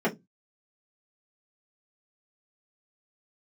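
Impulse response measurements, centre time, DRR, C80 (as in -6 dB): 13 ms, -6.0 dB, 27.5 dB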